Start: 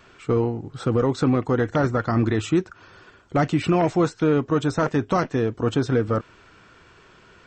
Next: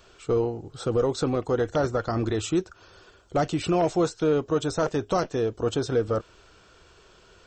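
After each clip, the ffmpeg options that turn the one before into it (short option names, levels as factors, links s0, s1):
-af "equalizer=f=125:t=o:w=1:g=-9,equalizer=f=250:t=o:w=1:g=-10,equalizer=f=1000:t=o:w=1:g=-6,equalizer=f=2000:t=o:w=1:g=-11,volume=1.5"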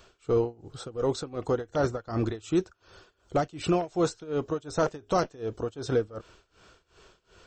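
-af "tremolo=f=2.7:d=0.92"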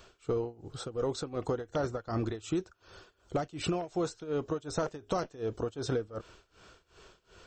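-af "acompressor=threshold=0.0398:ratio=6"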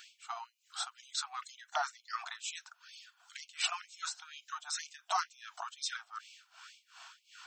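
-af "afftfilt=real='re*gte(b*sr/1024,640*pow(2200/640,0.5+0.5*sin(2*PI*2.1*pts/sr)))':imag='im*gte(b*sr/1024,640*pow(2200/640,0.5+0.5*sin(2*PI*2.1*pts/sr)))':win_size=1024:overlap=0.75,volume=2"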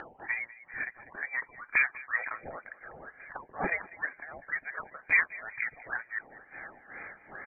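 -filter_complex "[0:a]asplit=2[s0][s1];[s1]adelay=196,lowpass=f=2400:p=1,volume=0.119,asplit=2[s2][s3];[s3]adelay=196,lowpass=f=2400:p=1,volume=0.42,asplit=2[s4][s5];[s5]adelay=196,lowpass=f=2400:p=1,volume=0.42[s6];[s0][s2][s4][s6]amix=inputs=4:normalize=0,lowpass=f=2600:t=q:w=0.5098,lowpass=f=2600:t=q:w=0.6013,lowpass=f=2600:t=q:w=0.9,lowpass=f=2600:t=q:w=2.563,afreqshift=-3100,acompressor=mode=upward:threshold=0.00501:ratio=2.5,volume=2.66"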